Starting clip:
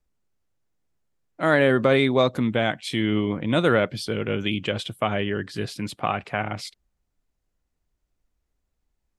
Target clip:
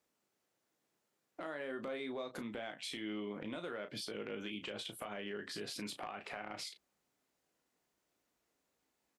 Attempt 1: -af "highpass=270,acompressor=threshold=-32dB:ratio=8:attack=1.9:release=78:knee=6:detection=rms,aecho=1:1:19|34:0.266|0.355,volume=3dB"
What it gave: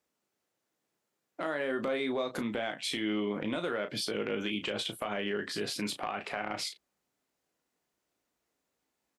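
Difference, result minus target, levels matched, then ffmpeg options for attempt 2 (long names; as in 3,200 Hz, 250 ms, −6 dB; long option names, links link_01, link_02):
downward compressor: peak gain reduction −9.5 dB
-af "highpass=270,acompressor=threshold=-43dB:ratio=8:attack=1.9:release=78:knee=6:detection=rms,aecho=1:1:19|34:0.266|0.355,volume=3dB"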